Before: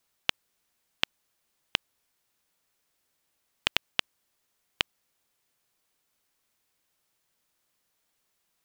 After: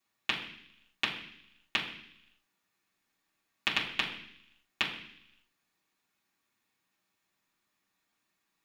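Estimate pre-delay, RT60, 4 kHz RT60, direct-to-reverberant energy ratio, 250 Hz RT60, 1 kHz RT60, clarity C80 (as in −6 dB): 3 ms, 0.70 s, 0.95 s, −7.0 dB, 0.90 s, 0.70 s, 10.0 dB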